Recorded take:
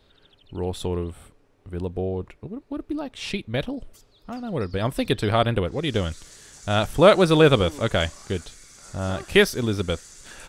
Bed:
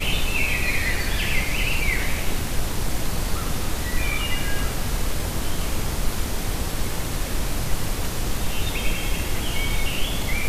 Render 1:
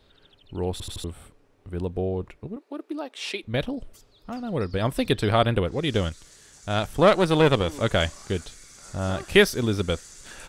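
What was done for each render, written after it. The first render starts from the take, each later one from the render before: 0.72 s: stutter in place 0.08 s, 4 plays; 2.56–3.43 s: high-pass 320 Hz 24 dB/octave; 6.09–7.69 s: valve stage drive 7 dB, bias 0.75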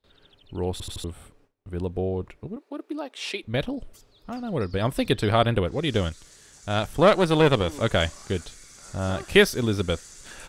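gate with hold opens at -49 dBFS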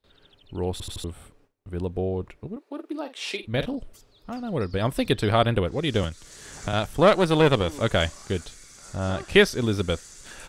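2.63–3.77 s: doubling 46 ms -11 dB; 6.03–6.73 s: three bands compressed up and down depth 100%; 8.96–9.61 s: Bessel low-pass 8.7 kHz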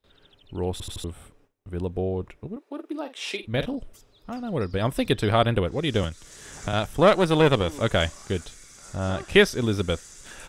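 band-stop 4.4 kHz, Q 11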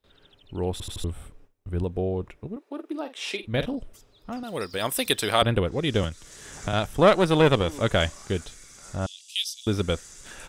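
1.00–1.84 s: bass shelf 76 Hz +12 dB; 4.43–5.42 s: RIAA curve recording; 9.06–9.67 s: steep high-pass 3 kHz 48 dB/octave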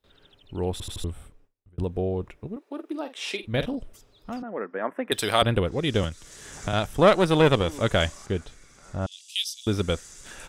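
0.96–1.78 s: fade out; 4.42–5.12 s: elliptic band-pass 210–1800 Hz; 8.26–9.12 s: treble shelf 3.6 kHz -11.5 dB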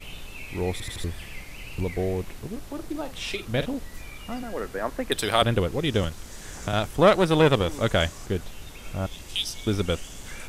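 add bed -17 dB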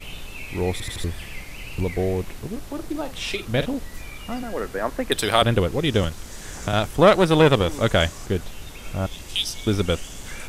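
trim +3.5 dB; peak limiter -2 dBFS, peak gain reduction 1.5 dB

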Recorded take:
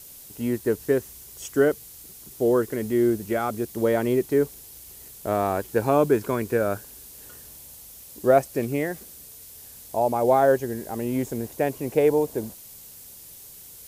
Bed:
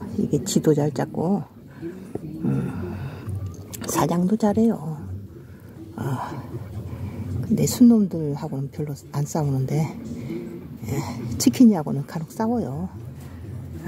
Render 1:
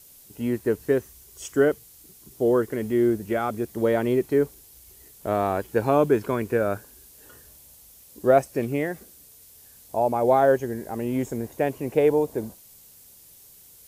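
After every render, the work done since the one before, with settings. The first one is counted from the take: noise print and reduce 6 dB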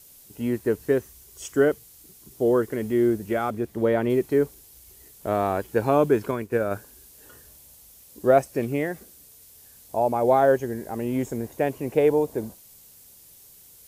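3.50–4.10 s: tone controls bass +1 dB, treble -7 dB; 6.31–6.71 s: upward expansion, over -39 dBFS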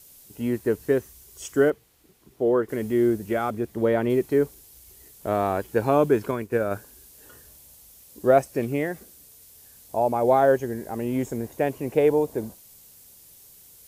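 1.70–2.69 s: tone controls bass -5 dB, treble -14 dB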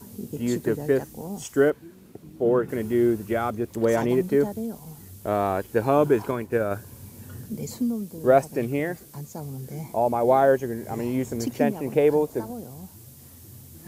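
add bed -12.5 dB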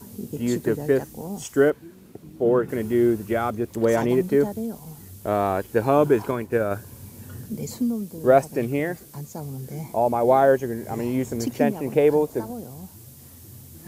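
trim +1.5 dB

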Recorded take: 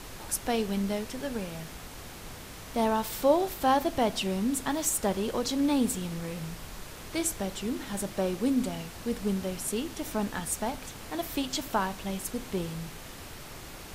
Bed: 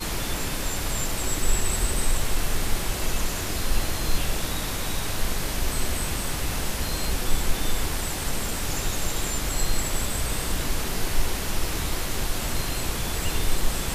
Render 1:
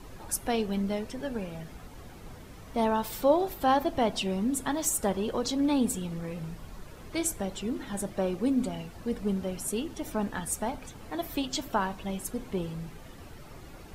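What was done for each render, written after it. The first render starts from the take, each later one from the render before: noise reduction 11 dB, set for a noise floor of -44 dBFS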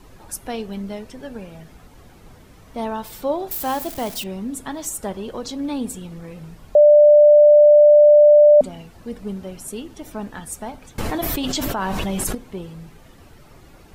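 3.51–4.24 s: zero-crossing glitches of -23 dBFS; 6.75–8.61 s: bleep 593 Hz -6.5 dBFS; 10.98–12.35 s: level flattener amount 100%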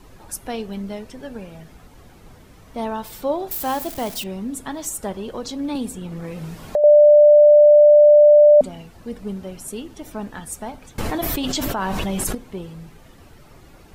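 5.75–6.84 s: three bands compressed up and down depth 70%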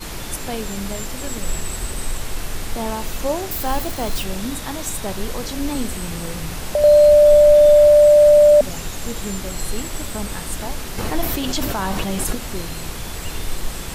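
add bed -2 dB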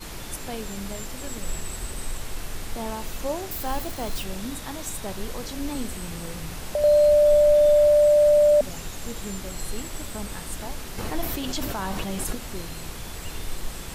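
trim -6.5 dB

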